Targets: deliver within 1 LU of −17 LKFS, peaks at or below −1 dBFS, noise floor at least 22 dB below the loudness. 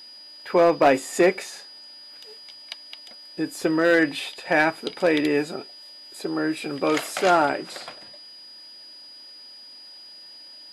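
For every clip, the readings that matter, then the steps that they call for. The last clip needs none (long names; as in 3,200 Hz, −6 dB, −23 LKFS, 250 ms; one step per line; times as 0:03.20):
share of clipped samples 0.3%; peaks flattened at −10.5 dBFS; interfering tone 4,900 Hz; level of the tone −42 dBFS; integrated loudness −22.5 LKFS; sample peak −10.5 dBFS; target loudness −17.0 LKFS
→ clipped peaks rebuilt −10.5 dBFS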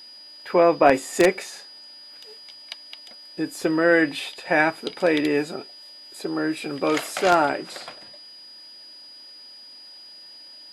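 share of clipped samples 0.0%; interfering tone 4,900 Hz; level of the tone −42 dBFS
→ notch filter 4,900 Hz, Q 30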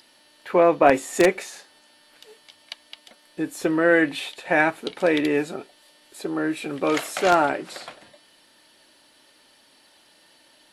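interfering tone none found; integrated loudness −22.0 LKFS; sample peak −1.5 dBFS; target loudness −17.0 LKFS
→ level +5 dB
brickwall limiter −1 dBFS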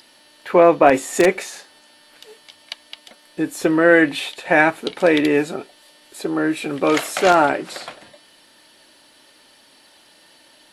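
integrated loudness −17.5 LKFS; sample peak −1.0 dBFS; background noise floor −52 dBFS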